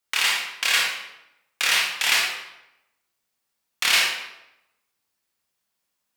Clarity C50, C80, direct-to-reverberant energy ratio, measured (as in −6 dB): 1.0 dB, 5.0 dB, −3.0 dB